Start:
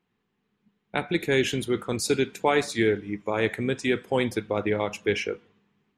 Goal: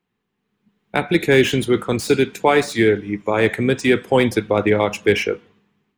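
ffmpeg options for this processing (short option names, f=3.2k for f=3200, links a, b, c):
-filter_complex "[0:a]acrossover=split=300|2800[a][b][c];[c]volume=36dB,asoftclip=hard,volume=-36dB[d];[a][b][d]amix=inputs=3:normalize=0,dynaudnorm=f=220:g=7:m=11.5dB"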